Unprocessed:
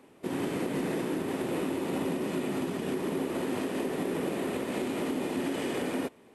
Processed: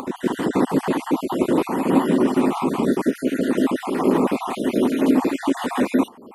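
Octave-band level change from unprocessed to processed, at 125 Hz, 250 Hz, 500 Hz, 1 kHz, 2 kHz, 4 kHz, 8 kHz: +8.0 dB, +12.5 dB, +9.5 dB, +13.0 dB, +7.5 dB, +6.0 dB, +5.5 dB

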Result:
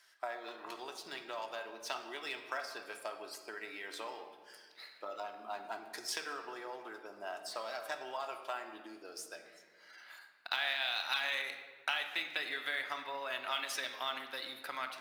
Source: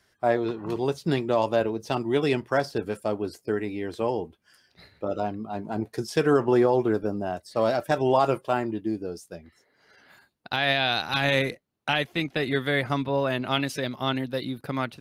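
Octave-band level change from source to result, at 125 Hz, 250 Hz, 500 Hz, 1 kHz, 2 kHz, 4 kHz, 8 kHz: under -40 dB, -27.0 dB, -20.5 dB, -12.5 dB, -8.0 dB, -7.0 dB, -2.0 dB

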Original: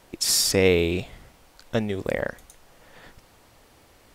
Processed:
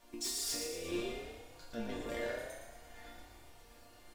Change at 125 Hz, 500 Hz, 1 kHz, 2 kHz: -22.5 dB, -16.5 dB, -9.5 dB, -15.0 dB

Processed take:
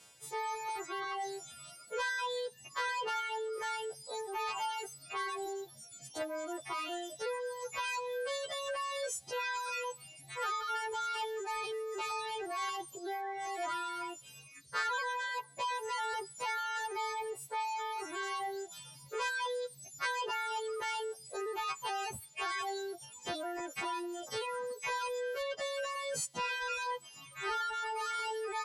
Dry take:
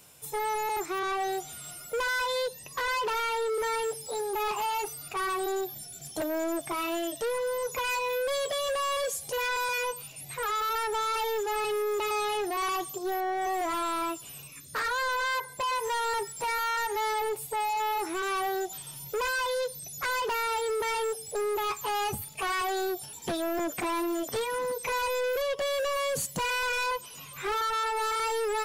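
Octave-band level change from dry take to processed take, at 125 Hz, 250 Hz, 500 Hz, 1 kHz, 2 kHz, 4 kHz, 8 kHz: -10.5 dB, -12.0 dB, -9.0 dB, -7.0 dB, -6.0 dB, -6.0 dB, -7.5 dB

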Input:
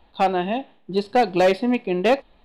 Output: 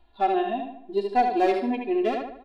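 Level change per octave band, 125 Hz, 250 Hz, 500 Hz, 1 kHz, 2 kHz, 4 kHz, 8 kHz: under -15 dB, -4.0 dB, -4.5 dB, -1.5 dB, -7.5 dB, -9.0 dB, no reading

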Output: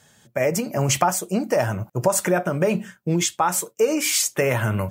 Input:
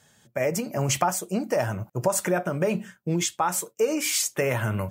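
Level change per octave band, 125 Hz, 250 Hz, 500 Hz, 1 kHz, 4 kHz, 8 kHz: +4.0 dB, +4.0 dB, +4.0 dB, +4.0 dB, +4.0 dB, +4.0 dB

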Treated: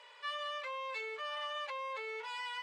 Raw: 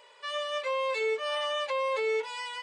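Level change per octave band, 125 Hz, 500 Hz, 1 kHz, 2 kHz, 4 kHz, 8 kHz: no reading, -15.0 dB, -6.5 dB, -6.5 dB, -7.5 dB, -12.0 dB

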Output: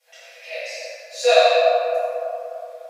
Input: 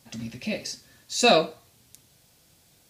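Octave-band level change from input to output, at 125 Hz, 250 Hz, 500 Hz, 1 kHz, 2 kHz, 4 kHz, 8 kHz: under -40 dB, under -35 dB, +9.0 dB, +8.0 dB, +5.0 dB, +2.0 dB, -2.5 dB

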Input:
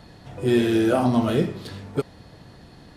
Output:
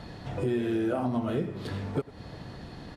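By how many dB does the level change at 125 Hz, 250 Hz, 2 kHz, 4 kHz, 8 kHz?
-5.5 dB, -8.0 dB, -8.5 dB, -10.5 dB, under -10 dB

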